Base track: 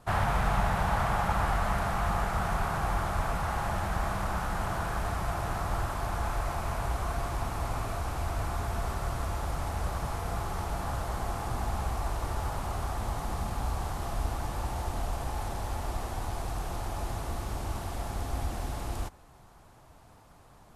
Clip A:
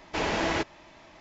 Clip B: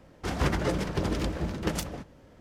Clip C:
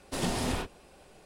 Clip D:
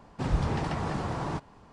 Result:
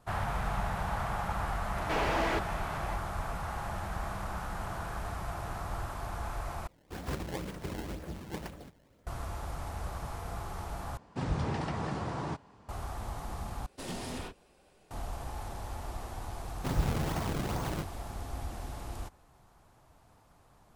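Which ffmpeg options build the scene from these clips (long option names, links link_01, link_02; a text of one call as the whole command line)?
ffmpeg -i bed.wav -i cue0.wav -i cue1.wav -i cue2.wav -i cue3.wav -filter_complex "[4:a]asplit=2[link_01][link_02];[0:a]volume=-6dB[link_03];[1:a]asplit=2[link_04][link_05];[link_05]highpass=frequency=720:poles=1,volume=28dB,asoftclip=type=tanh:threshold=-16dB[link_06];[link_04][link_06]amix=inputs=2:normalize=0,lowpass=frequency=1100:poles=1,volume=-6dB[link_07];[2:a]acrusher=samples=21:mix=1:aa=0.000001:lfo=1:lforange=33.6:lforate=2[link_08];[link_01]highpass=54[link_09];[3:a]asoftclip=type=hard:threshold=-24dB[link_10];[link_02]acrusher=samples=28:mix=1:aa=0.000001:lfo=1:lforange=44.8:lforate=2.4[link_11];[link_03]asplit=4[link_12][link_13][link_14][link_15];[link_12]atrim=end=6.674[link_16];[link_08]atrim=end=2.4,asetpts=PTS-STARTPTS,volume=-10dB[link_17];[link_13]atrim=start=9.066:end=10.974[link_18];[link_09]atrim=end=1.72,asetpts=PTS-STARTPTS,volume=-3.5dB[link_19];[link_14]atrim=start=12.686:end=13.664[link_20];[link_10]atrim=end=1.25,asetpts=PTS-STARTPTS,volume=-8dB[link_21];[link_15]atrim=start=14.906[link_22];[link_07]atrim=end=1.2,asetpts=PTS-STARTPTS,volume=-6dB,afade=type=in:duration=0.004:curve=hsin,afade=type=out:start_time=1.196:duration=0.004:curve=hsin,adelay=1760[link_23];[link_11]atrim=end=1.72,asetpts=PTS-STARTPTS,volume=-3dB,afade=type=in:duration=0.004:curve=hsin,afade=type=out:start_time=1.716:duration=0.004:curve=hsin,adelay=16450[link_24];[link_16][link_17]acrossfade=duration=0.004:curve1=hsin:curve2=hsin[link_25];[link_25][link_18]acrossfade=duration=0.004:curve1=hsin:curve2=hsin[link_26];[link_26][link_19]acrossfade=duration=0.004:curve1=hsin:curve2=hsin[link_27];[link_27][link_20]acrossfade=duration=0.004:curve1=hsin:curve2=hsin[link_28];[link_28][link_21]acrossfade=duration=0.004:curve1=hsin:curve2=hsin[link_29];[link_29][link_22]acrossfade=duration=0.004:curve1=hsin:curve2=hsin[link_30];[link_30][link_23][link_24]amix=inputs=3:normalize=0" out.wav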